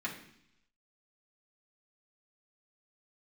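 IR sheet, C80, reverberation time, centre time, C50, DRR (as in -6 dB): 11.5 dB, 0.70 s, 21 ms, 8.0 dB, -5.5 dB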